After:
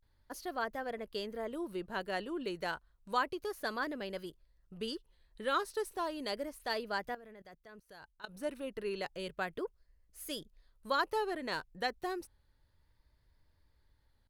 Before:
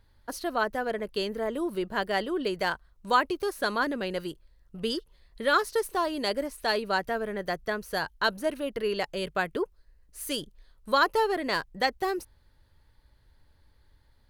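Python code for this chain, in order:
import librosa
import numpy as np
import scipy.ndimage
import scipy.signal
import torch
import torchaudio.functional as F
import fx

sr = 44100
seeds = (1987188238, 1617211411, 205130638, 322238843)

y = fx.level_steps(x, sr, step_db=22, at=(7.15, 8.36))
y = fx.vibrato(y, sr, rate_hz=0.32, depth_cents=83.0)
y = y * 10.0 ** (-9.0 / 20.0)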